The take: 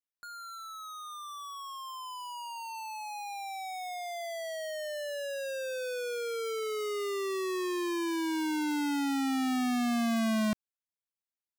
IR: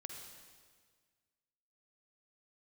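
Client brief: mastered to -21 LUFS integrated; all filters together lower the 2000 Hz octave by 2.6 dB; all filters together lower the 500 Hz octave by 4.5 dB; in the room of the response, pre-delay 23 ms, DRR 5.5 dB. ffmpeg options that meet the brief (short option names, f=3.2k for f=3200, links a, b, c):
-filter_complex "[0:a]equalizer=f=500:t=o:g=-6,equalizer=f=2k:t=o:g=-3,asplit=2[a][b];[1:a]atrim=start_sample=2205,adelay=23[c];[b][c]afir=irnorm=-1:irlink=0,volume=-2dB[d];[a][d]amix=inputs=2:normalize=0,volume=13.5dB"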